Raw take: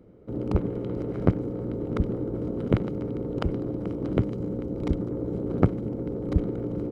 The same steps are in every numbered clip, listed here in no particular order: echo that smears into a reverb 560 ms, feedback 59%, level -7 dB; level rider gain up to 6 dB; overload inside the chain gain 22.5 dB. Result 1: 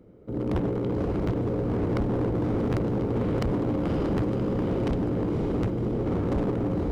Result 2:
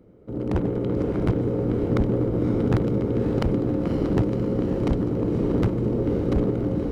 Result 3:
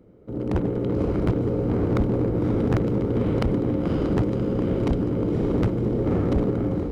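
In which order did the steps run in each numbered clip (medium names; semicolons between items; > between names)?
level rider > echo that smears into a reverb > overload inside the chain; overload inside the chain > level rider > echo that smears into a reverb; echo that smears into a reverb > overload inside the chain > level rider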